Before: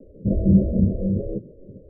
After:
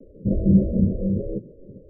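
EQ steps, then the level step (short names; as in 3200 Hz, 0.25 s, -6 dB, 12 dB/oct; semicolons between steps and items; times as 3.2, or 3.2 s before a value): steep low-pass 630 Hz 48 dB/oct; bell 78 Hz -3.5 dB 0.77 oct; 0.0 dB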